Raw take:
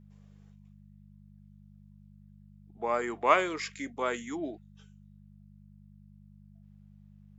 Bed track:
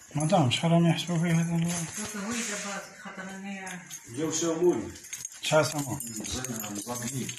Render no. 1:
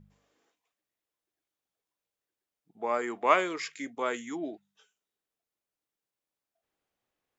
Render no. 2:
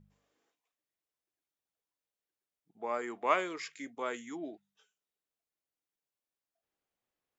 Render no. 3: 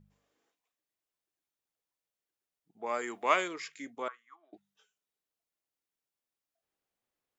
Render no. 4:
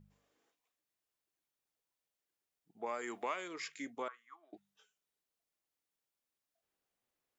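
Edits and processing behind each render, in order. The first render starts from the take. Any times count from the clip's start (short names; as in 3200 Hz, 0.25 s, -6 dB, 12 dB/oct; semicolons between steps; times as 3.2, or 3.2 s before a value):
de-hum 50 Hz, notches 4
gain -5.5 dB
2.86–3.48 high shelf 2500 Hz +9.5 dB; 4.08–4.53 ladder band-pass 1200 Hz, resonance 85%
compressor 6:1, threshold -36 dBFS, peak gain reduction 15 dB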